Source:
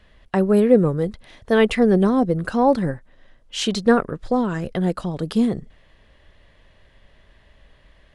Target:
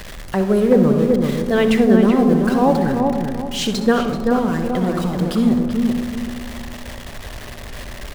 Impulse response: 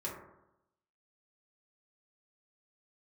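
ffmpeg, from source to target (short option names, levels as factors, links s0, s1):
-filter_complex "[0:a]aeval=exprs='val(0)+0.5*0.0422*sgn(val(0))':c=same,asplit=2[s0][s1];[s1]adelay=383,lowpass=f=1700:p=1,volume=0.631,asplit=2[s2][s3];[s3]adelay=383,lowpass=f=1700:p=1,volume=0.33,asplit=2[s4][s5];[s5]adelay=383,lowpass=f=1700:p=1,volume=0.33,asplit=2[s6][s7];[s7]adelay=383,lowpass=f=1700:p=1,volume=0.33[s8];[s0][s2][s4][s6][s8]amix=inputs=5:normalize=0,asplit=2[s9][s10];[1:a]atrim=start_sample=2205,asetrate=28224,aresample=44100,adelay=62[s11];[s10][s11]afir=irnorm=-1:irlink=0,volume=0.282[s12];[s9][s12]amix=inputs=2:normalize=0,volume=0.891"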